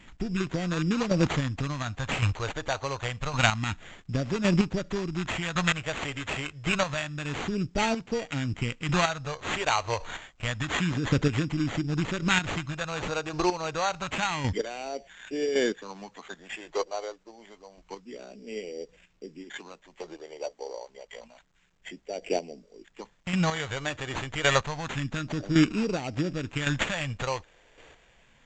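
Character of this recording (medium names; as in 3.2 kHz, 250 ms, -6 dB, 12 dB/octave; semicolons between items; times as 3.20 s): phasing stages 2, 0.28 Hz, lowest notch 210–1100 Hz; aliases and images of a low sample rate 5.2 kHz, jitter 0%; chopped level 0.9 Hz, depth 60%, duty 15%; A-law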